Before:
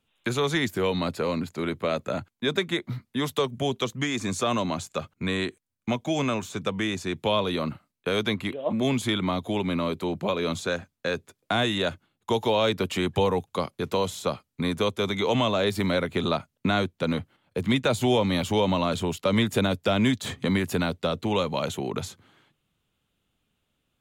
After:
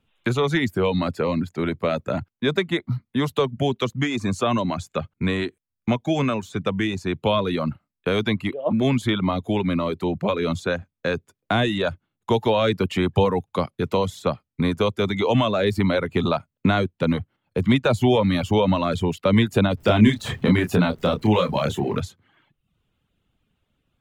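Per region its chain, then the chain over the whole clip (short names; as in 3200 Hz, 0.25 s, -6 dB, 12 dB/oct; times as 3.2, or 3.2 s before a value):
19.77–22 zero-crossing step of -40.5 dBFS + doubler 28 ms -4 dB
whole clip: low shelf 190 Hz +5 dB; reverb removal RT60 0.63 s; tone controls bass +1 dB, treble -8 dB; gain +3.5 dB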